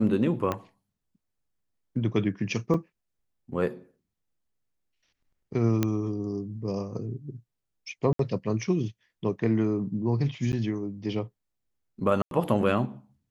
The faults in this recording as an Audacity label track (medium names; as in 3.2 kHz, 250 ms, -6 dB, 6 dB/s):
0.520000	0.520000	pop -15 dBFS
2.740000	2.740000	dropout 3.4 ms
5.830000	5.830000	pop -11 dBFS
8.130000	8.190000	dropout 63 ms
10.520000	10.530000	dropout 9.9 ms
12.220000	12.310000	dropout 92 ms